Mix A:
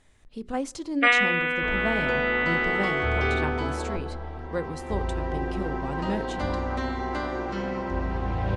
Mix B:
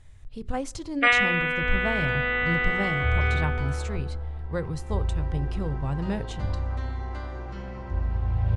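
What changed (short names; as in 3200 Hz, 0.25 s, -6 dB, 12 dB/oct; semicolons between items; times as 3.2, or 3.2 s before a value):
second sound -9.5 dB; master: add resonant low shelf 160 Hz +12 dB, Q 1.5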